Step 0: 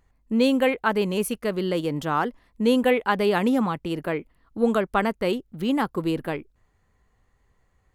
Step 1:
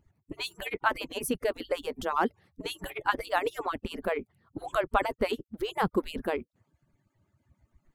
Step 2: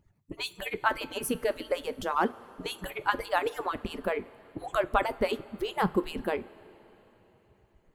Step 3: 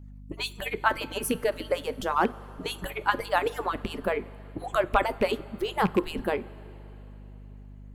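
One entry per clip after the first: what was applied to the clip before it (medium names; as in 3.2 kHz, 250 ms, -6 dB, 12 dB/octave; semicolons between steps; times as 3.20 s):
harmonic-percussive separation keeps percussive; bass shelf 370 Hz +10.5 dB; trim -3 dB
two-slope reverb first 0.26 s, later 4.1 s, from -18 dB, DRR 12 dB
rattle on loud lows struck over -30 dBFS, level -25 dBFS; hum 50 Hz, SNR 15 dB; endings held to a fixed fall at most 560 dB/s; trim +2.5 dB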